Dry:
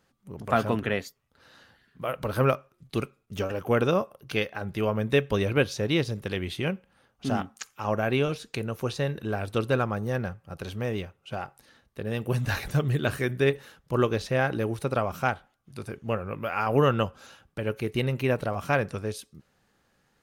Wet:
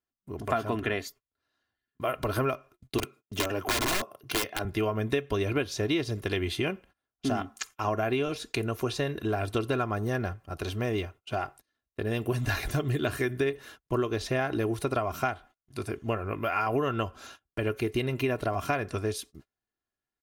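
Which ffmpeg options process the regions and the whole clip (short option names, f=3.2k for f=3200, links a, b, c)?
-filter_complex "[0:a]asettb=1/sr,asplit=3[a][b][c];[a]atrim=end=2.984[d];[b]atrim=start=2.98:end=4.65,asetpts=PTS-STARTPTS,afade=t=in:d=0.004:c=qsin,afade=t=out:st=1.666:d=0.004:c=qsin,highpass=f=97:w=0.5412,highpass=f=97:w=1.3066,aeval=exprs='(mod(11.2*val(0)+1,2)-1)/11.2':c=same[e];[c]atrim=start=4.646[f];[d][e]acrossfade=d=0.004:c1=hsin:c2=qsin[g];[g][f]acrossfade=d=0.004:c1=qsin:c2=hsin,agate=range=-28dB:threshold=-49dB:ratio=16:detection=peak,aecho=1:1:2.9:0.58,acompressor=threshold=-27dB:ratio=6,volume=2.5dB"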